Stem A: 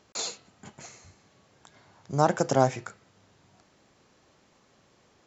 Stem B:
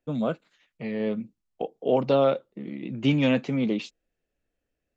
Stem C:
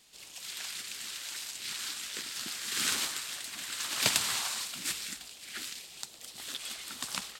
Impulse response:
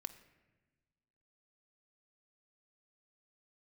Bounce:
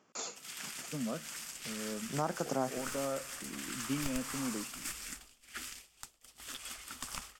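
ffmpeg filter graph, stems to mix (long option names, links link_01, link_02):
-filter_complex "[0:a]highpass=190,volume=-6.5dB[link_01];[1:a]adelay=850,volume=-11dB,asplit=2[link_02][link_03];[link_03]volume=-10.5dB[link_04];[2:a]agate=range=-33dB:threshold=-37dB:ratio=3:detection=peak,adynamicequalizer=threshold=0.00447:dfrequency=3400:dqfactor=1.7:tfrequency=3400:tqfactor=1.7:attack=5:release=100:ratio=0.375:range=2.5:mode=cutabove:tftype=bell,aeval=exprs='clip(val(0),-1,0.0422)':channel_layout=same,volume=1.5dB[link_05];[link_02][link_05]amix=inputs=2:normalize=0,asubboost=boost=12:cutoff=50,acompressor=threshold=-39dB:ratio=3,volume=0dB[link_06];[3:a]atrim=start_sample=2205[link_07];[link_04][link_07]afir=irnorm=-1:irlink=0[link_08];[link_01][link_06][link_08]amix=inputs=3:normalize=0,equalizer=frequency=160:width_type=o:width=0.33:gain=6,equalizer=frequency=250:width_type=o:width=0.33:gain=6,equalizer=frequency=1250:width_type=o:width=0.33:gain=5,equalizer=frequency=4000:width_type=o:width=0.33:gain=-10,alimiter=limit=-21dB:level=0:latency=1:release=380"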